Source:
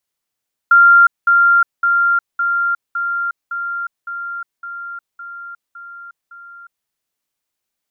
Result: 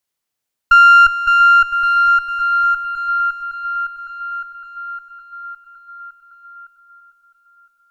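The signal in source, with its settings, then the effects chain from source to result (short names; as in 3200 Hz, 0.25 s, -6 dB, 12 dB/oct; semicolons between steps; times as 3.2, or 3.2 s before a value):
level ladder 1390 Hz -5 dBFS, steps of -3 dB, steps 11, 0.36 s 0.20 s
one diode to ground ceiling -13 dBFS; dynamic EQ 1400 Hz, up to +4 dB, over -23 dBFS; multi-head echo 0.337 s, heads first and third, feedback 46%, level -14 dB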